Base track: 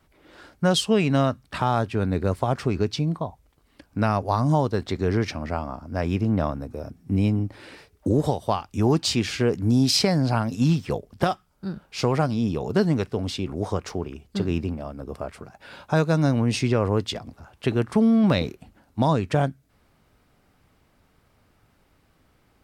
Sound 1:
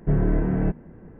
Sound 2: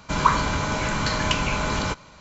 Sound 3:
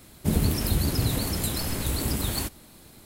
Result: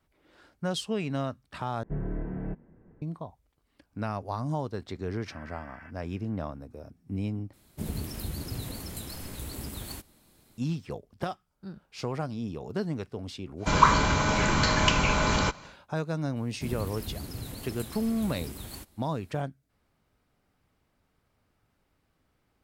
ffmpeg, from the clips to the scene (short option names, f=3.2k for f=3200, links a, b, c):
-filter_complex "[1:a]asplit=2[a][b];[3:a]asplit=2[c][d];[0:a]volume=-10.5dB[e];[b]highpass=f=1.3k:w=0.5412,highpass=f=1.3k:w=1.3066[f];[e]asplit=3[g][h][i];[g]atrim=end=1.834[j];[a]atrim=end=1.19,asetpts=PTS-STARTPTS,volume=-12dB[k];[h]atrim=start=3.016:end=7.534[l];[c]atrim=end=3.05,asetpts=PTS-STARTPTS,volume=-11dB[m];[i]atrim=start=10.576[n];[f]atrim=end=1.19,asetpts=PTS-STARTPTS,volume=-3.5dB,afade=t=in:d=0.004:c=hsin,afade=t=out:st=1.186:d=0.004:c=hsin,adelay=5190[o];[2:a]atrim=end=2.2,asetpts=PTS-STARTPTS,afade=t=in:d=0.1,afade=t=out:st=2.1:d=0.1,adelay=13570[p];[d]atrim=end=3.05,asetpts=PTS-STARTPTS,volume=-13.5dB,afade=t=in:d=0.004:c=hsin,afade=t=out:st=3.046:d=0.004:c=hsin,adelay=721476S[q];[j][k]acrossfade=d=0.004:c1=hsin:c2=hsin[r];[r][l]acrossfade=d=0.004:c1=hsin:c2=hsin[s];[s][m]acrossfade=d=0.004:c1=hsin:c2=hsin[t];[t][n]acrossfade=d=0.004:c1=hsin:c2=hsin[u];[u][o][p][q]amix=inputs=4:normalize=0"